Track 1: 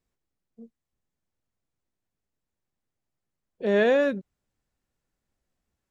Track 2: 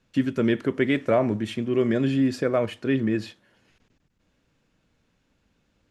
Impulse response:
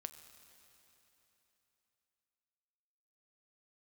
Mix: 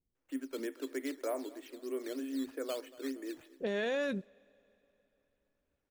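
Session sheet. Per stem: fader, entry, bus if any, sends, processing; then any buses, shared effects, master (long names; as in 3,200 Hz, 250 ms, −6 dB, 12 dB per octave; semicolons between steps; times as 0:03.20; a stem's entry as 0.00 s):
−3.5 dB, 0.00 s, send −22 dB, no echo send, low-pass that shuts in the quiet parts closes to 370 Hz, open at −23 dBFS; high-shelf EQ 2,500 Hz +12 dB
−14.0 dB, 0.15 s, no send, echo send −20.5 dB, Chebyshev high-pass filter 260 Hz, order 8; high-shelf EQ 4,200 Hz −11.5 dB; sample-and-hold swept by an LFO 8×, swing 100% 3.2 Hz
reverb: on, RT60 3.5 s, pre-delay 6 ms
echo: repeating echo 233 ms, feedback 49%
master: brickwall limiter −26 dBFS, peak gain reduction 13 dB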